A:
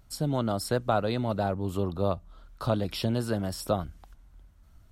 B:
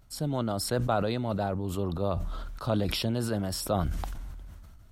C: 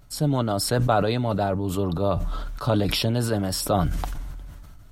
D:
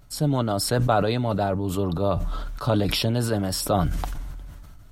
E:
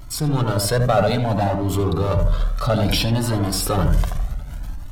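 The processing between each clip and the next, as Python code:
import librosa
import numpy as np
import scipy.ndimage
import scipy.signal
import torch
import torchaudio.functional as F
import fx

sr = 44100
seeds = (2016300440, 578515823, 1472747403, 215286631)

y1 = fx.sustainer(x, sr, db_per_s=25.0)
y1 = y1 * librosa.db_to_amplitude(-2.5)
y2 = y1 + 0.34 * np.pad(y1, (int(6.9 * sr / 1000.0), 0))[:len(y1)]
y2 = y2 * librosa.db_to_amplitude(6.0)
y3 = y2
y4 = fx.power_curve(y3, sr, exponent=0.7)
y4 = fx.echo_filtered(y4, sr, ms=79, feedback_pct=45, hz=1300.0, wet_db=-4.0)
y4 = fx.comb_cascade(y4, sr, direction='rising', hz=0.6)
y4 = y4 * librosa.db_to_amplitude(3.0)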